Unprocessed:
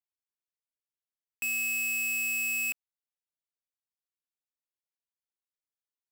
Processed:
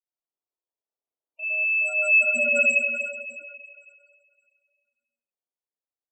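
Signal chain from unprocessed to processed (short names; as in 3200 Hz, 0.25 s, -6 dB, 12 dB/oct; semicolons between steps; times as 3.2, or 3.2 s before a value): Wiener smoothing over 25 samples; Doppler pass-by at 2.49, 7 m/s, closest 3.9 m; LPF 10000 Hz 24 dB/oct; three-band isolator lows -23 dB, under 280 Hz, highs -13 dB, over 2500 Hz; in parallel at -9 dB: sample-and-hold 22×; on the sum: Schroeder reverb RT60 2.2 s, combs from 26 ms, DRR -10 dB; spectral gate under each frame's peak -15 dB strong; gain +8.5 dB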